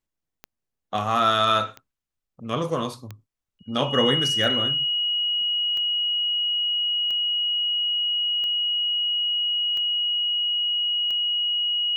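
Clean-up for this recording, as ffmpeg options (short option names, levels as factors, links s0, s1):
-af "adeclick=t=4,bandreject=f=2900:w=30"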